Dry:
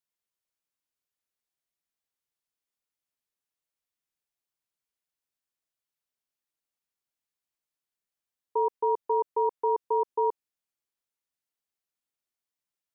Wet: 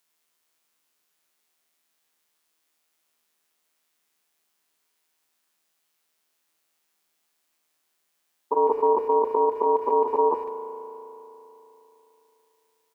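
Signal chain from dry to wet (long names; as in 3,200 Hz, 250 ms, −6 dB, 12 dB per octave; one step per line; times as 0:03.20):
spectrum averaged block by block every 50 ms
high-pass filter 230 Hz 12 dB per octave
notch filter 520 Hz, Q 12
in parallel at +2.5 dB: compressor whose output falls as the input rises −39 dBFS, ratio −1
on the sum: amplitude modulation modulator 160 Hz, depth 35%
far-end echo of a speakerphone 150 ms, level −21 dB
spring reverb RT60 3.4 s, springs 36 ms, chirp 65 ms, DRR 7 dB
level +6 dB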